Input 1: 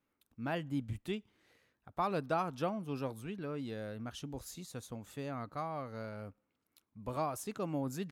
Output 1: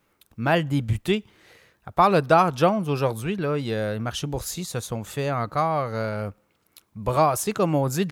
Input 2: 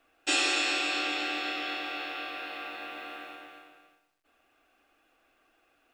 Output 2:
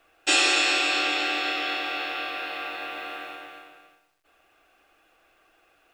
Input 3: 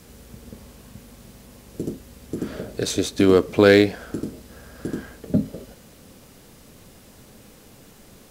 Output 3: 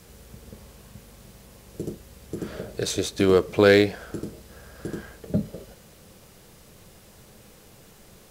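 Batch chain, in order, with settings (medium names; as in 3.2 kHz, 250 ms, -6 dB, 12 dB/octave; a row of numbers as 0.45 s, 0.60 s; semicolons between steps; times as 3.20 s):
peaking EQ 260 Hz -13 dB 0.24 oct; normalise loudness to -24 LUFS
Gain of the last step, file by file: +16.5 dB, +6.0 dB, -1.5 dB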